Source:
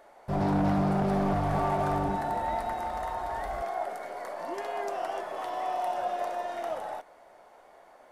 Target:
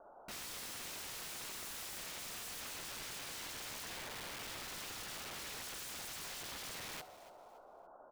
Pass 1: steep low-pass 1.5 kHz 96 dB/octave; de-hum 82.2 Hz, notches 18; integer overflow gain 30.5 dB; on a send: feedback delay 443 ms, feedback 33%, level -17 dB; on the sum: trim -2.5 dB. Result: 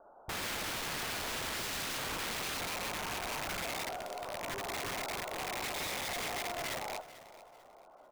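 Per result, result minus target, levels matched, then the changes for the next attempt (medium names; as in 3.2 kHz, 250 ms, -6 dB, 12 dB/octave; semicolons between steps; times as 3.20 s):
integer overflow: distortion -33 dB; echo 158 ms late
change: integer overflow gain 39 dB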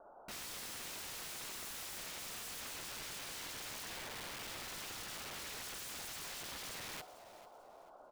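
echo 158 ms late
change: feedback delay 285 ms, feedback 33%, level -17 dB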